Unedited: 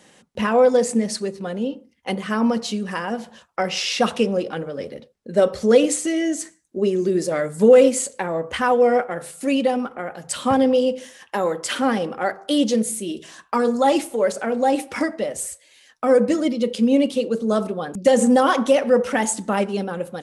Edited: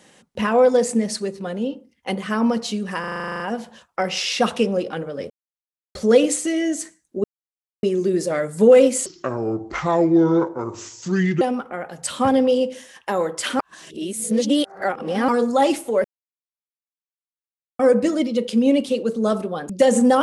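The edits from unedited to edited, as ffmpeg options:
ffmpeg -i in.wav -filter_complex "[0:a]asplit=20[link_01][link_02][link_03][link_04][link_05][link_06][link_07][link_08][link_09][link_10][link_11][link_12][link_13][link_14][link_15][link_16][link_17][link_18][link_19][link_20];[link_01]atrim=end=3.042[link_21];[link_02]atrim=start=2.998:end=3.042[link_22];[link_03]atrim=start=2.998:end=3.042[link_23];[link_04]atrim=start=2.998:end=3.042[link_24];[link_05]atrim=start=2.998:end=3.042[link_25];[link_06]atrim=start=2.998:end=3.042[link_26];[link_07]atrim=start=2.998:end=3.042[link_27];[link_08]atrim=start=2.998:end=3.042[link_28];[link_09]atrim=start=2.998:end=3.042[link_29];[link_10]atrim=start=2.998:end=3.042[link_30];[link_11]atrim=start=2.998:end=4.9,asetpts=PTS-STARTPTS,afade=type=out:start_time=1.898:duration=0.004:curve=hsin[link_31];[link_12]atrim=start=4.9:end=5.55,asetpts=PTS-STARTPTS,volume=0[link_32];[link_13]atrim=start=5.55:end=6.84,asetpts=PTS-STARTPTS,afade=type=in:duration=0.004:curve=hsin,afade=type=out:start_time=1.286:duration=0.004:curve=hsin,apad=pad_dur=0.59[link_33];[link_14]atrim=start=6.84:end=8.074,asetpts=PTS-STARTPTS,afade=type=in:duration=0.004:curve=hsin[link_34];[link_15]atrim=start=8.07:end=9.67,asetpts=PTS-STARTPTS,asetrate=29988,aresample=44100[link_35];[link_16]atrim=start=9.666:end=11.852[link_36];[link_17]atrim=start=11.848:end=13.542,asetpts=PTS-STARTPTS,areverse[link_37];[link_18]atrim=start=13.538:end=14.3,asetpts=PTS-STARTPTS,afade=type=out:start_time=0.758:duration=0.004:curve=hsin[link_38];[link_19]atrim=start=14.3:end=16.05,asetpts=PTS-STARTPTS,volume=0[link_39];[link_20]atrim=start=16.05,asetpts=PTS-STARTPTS,afade=type=in:duration=0.004:curve=hsin[link_40];[link_21][link_22]acrossfade=duration=0.004:curve1=hsin:curve2=hsin[link_41];[link_41][link_23]acrossfade=duration=0.004:curve1=hsin:curve2=hsin[link_42];[link_42][link_24]acrossfade=duration=0.004:curve1=hsin:curve2=hsin[link_43];[link_43][link_25]acrossfade=duration=0.004:curve1=hsin:curve2=hsin[link_44];[link_44][link_26]acrossfade=duration=0.004:curve1=hsin:curve2=hsin[link_45];[link_45][link_27]acrossfade=duration=0.004:curve1=hsin:curve2=hsin[link_46];[link_46][link_28]acrossfade=duration=0.004:curve1=hsin:curve2=hsin[link_47];[link_47][link_29]acrossfade=duration=0.004:curve1=hsin:curve2=hsin[link_48];[link_48][link_30]acrossfade=duration=0.004:curve1=hsin:curve2=hsin[link_49];[link_31][link_32][link_33][link_34]concat=n=4:v=0:a=1[link_50];[link_49][link_50]acrossfade=duration=0.004:curve1=hsin:curve2=hsin[link_51];[link_51][link_35]acrossfade=duration=0.004:curve1=hsin:curve2=hsin[link_52];[link_52][link_36]acrossfade=duration=0.004:curve1=hsin:curve2=hsin[link_53];[link_53][link_37]acrossfade=duration=0.004:curve1=hsin:curve2=hsin[link_54];[link_38][link_39][link_40]concat=n=3:v=0:a=1[link_55];[link_54][link_55]acrossfade=duration=0.004:curve1=hsin:curve2=hsin" out.wav

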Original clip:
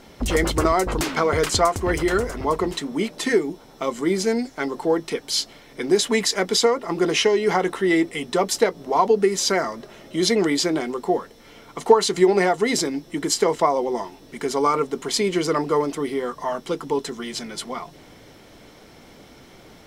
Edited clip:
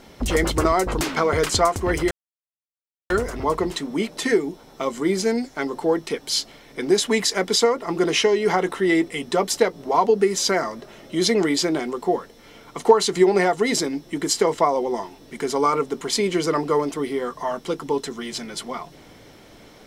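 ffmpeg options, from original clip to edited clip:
ffmpeg -i in.wav -filter_complex "[0:a]asplit=2[link_01][link_02];[link_01]atrim=end=2.11,asetpts=PTS-STARTPTS,afade=type=out:start_time=2.106:duration=0.004:curve=hsin,apad=pad_dur=0.99[link_03];[link_02]atrim=start=2.11,asetpts=PTS-STARTPTS,afade=type=in:duration=0.004:curve=hsin[link_04];[link_03][link_04]concat=n=2:v=0:a=1" out.wav

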